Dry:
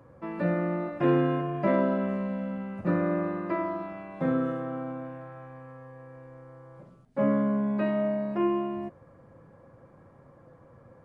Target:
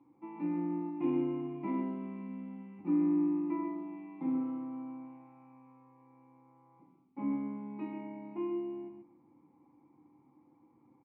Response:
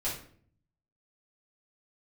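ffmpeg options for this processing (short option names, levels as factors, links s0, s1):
-filter_complex "[0:a]asplit=3[s0][s1][s2];[s0]bandpass=f=300:t=q:w=8,volume=1[s3];[s1]bandpass=f=870:t=q:w=8,volume=0.501[s4];[s2]bandpass=f=2240:t=q:w=8,volume=0.355[s5];[s3][s4][s5]amix=inputs=3:normalize=0,aecho=1:1:132:0.398,asplit=2[s6][s7];[1:a]atrim=start_sample=2205[s8];[s7][s8]afir=irnorm=-1:irlink=0,volume=0.237[s9];[s6][s9]amix=inputs=2:normalize=0"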